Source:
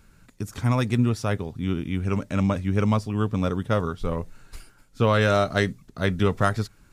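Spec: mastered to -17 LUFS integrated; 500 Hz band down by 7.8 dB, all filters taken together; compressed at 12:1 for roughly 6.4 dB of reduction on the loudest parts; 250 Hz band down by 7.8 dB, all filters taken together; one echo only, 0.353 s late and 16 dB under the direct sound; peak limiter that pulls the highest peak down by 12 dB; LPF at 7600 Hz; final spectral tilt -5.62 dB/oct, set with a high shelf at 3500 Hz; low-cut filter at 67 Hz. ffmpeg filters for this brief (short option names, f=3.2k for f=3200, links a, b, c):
-af "highpass=67,lowpass=7.6k,equalizer=f=250:t=o:g=-9,equalizer=f=500:t=o:g=-7.5,highshelf=f=3.5k:g=4.5,acompressor=threshold=-25dB:ratio=12,alimiter=level_in=1dB:limit=-24dB:level=0:latency=1,volume=-1dB,aecho=1:1:353:0.158,volume=19dB"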